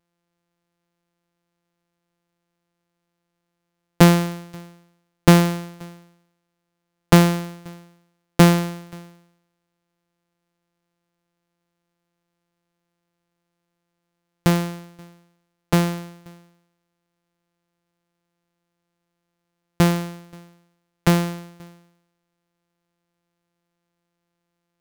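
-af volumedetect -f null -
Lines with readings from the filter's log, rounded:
mean_volume: -25.6 dB
max_volume: -2.7 dB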